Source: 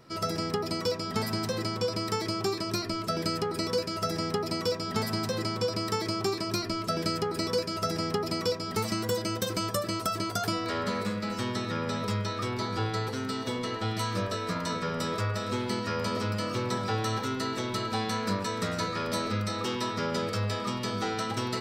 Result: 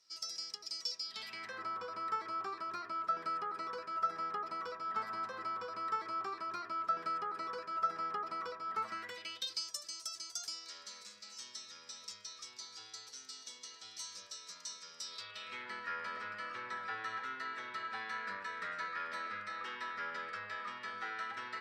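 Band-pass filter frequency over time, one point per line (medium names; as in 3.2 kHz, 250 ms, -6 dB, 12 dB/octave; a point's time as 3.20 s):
band-pass filter, Q 3.2
0.97 s 5.7 kHz
1.63 s 1.3 kHz
8.86 s 1.3 kHz
9.69 s 6.1 kHz
14.99 s 6.1 kHz
15.69 s 1.7 kHz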